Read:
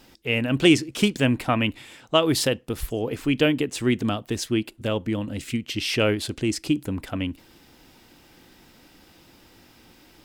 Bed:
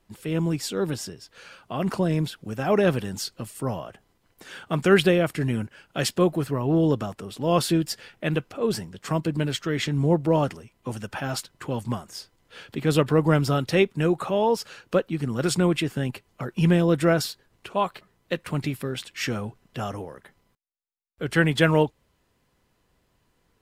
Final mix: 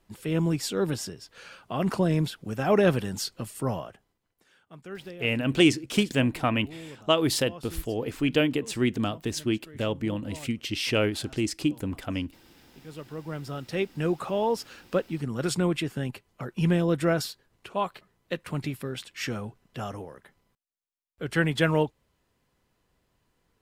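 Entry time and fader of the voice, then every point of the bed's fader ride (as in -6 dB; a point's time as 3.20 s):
4.95 s, -3.0 dB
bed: 3.79 s -0.5 dB
4.56 s -22.5 dB
12.87 s -22.5 dB
14.10 s -4 dB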